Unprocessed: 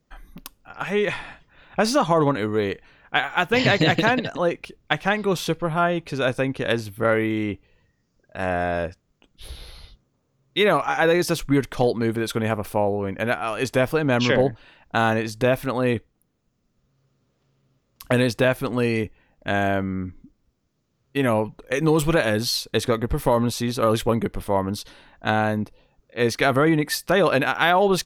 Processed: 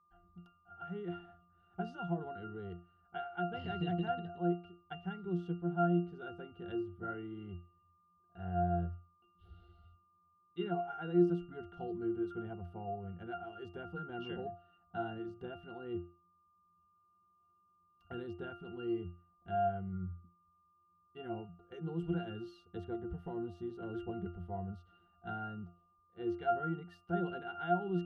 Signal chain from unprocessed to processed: octave resonator F, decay 0.33 s; whine 1200 Hz -68 dBFS; gain -1.5 dB

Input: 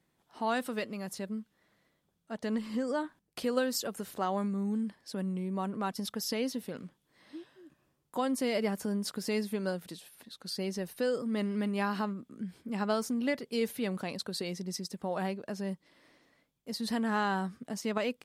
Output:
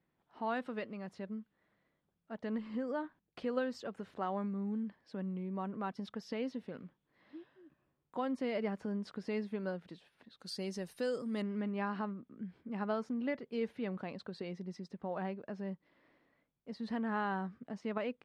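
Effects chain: LPF 2600 Hz 12 dB/oct, from 10.39 s 9000 Hz, from 11.42 s 2300 Hz; gain -5 dB

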